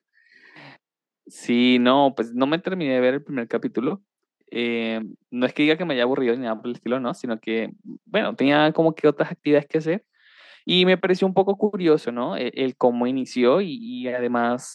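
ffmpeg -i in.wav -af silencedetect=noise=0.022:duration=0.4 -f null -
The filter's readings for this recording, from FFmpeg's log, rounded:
silence_start: 0.00
silence_end: 0.56 | silence_duration: 0.56
silence_start: 0.68
silence_end: 1.36 | silence_duration: 0.68
silence_start: 3.96
silence_end: 4.53 | silence_duration: 0.57
silence_start: 9.98
silence_end: 10.67 | silence_duration: 0.69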